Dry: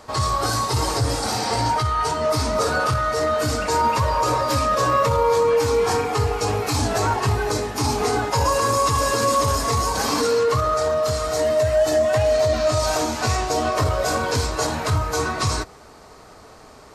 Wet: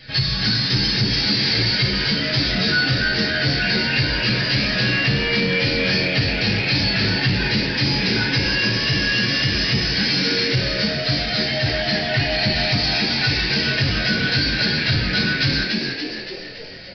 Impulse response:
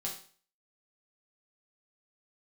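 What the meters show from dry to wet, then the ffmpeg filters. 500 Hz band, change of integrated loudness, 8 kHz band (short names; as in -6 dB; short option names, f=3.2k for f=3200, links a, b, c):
-8.0 dB, +2.5 dB, -11.5 dB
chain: -filter_complex "[0:a]firequalizer=gain_entry='entry(190,0);entry(360,-10);entry(1100,-28);entry(1600,5)':delay=0.05:min_phase=1[a];[1:a]atrim=start_sample=2205,asetrate=48510,aresample=44100[b];[a][b]afir=irnorm=-1:irlink=0,asplit=2[c][d];[d]acrusher=bits=3:mix=0:aa=0.000001,volume=-11dB[e];[c][e]amix=inputs=2:normalize=0,aecho=1:1:6.1:0.61,acompressor=threshold=-19dB:ratio=6,asplit=8[f][g][h][i][j][k][l][m];[g]adelay=286,afreqshift=83,volume=-5dB[n];[h]adelay=572,afreqshift=166,volume=-10.4dB[o];[i]adelay=858,afreqshift=249,volume=-15.7dB[p];[j]adelay=1144,afreqshift=332,volume=-21.1dB[q];[k]adelay=1430,afreqshift=415,volume=-26.4dB[r];[l]adelay=1716,afreqshift=498,volume=-31.8dB[s];[m]adelay=2002,afreqshift=581,volume=-37.1dB[t];[f][n][o][p][q][r][s][t]amix=inputs=8:normalize=0,aresample=11025,asoftclip=type=tanh:threshold=-18dB,aresample=44100,volume=6dB"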